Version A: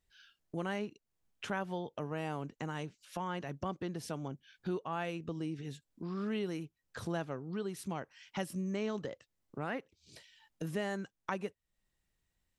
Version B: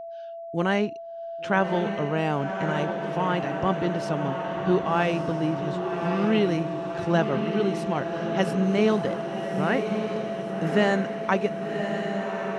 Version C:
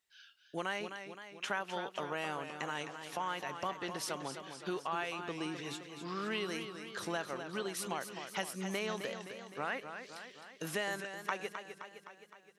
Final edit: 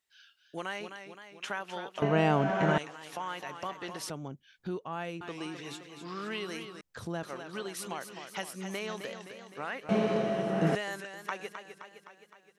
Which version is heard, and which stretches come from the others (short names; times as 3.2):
C
2.02–2.78 from B
4.1–5.21 from A
6.81–7.23 from A
9.89–10.75 from B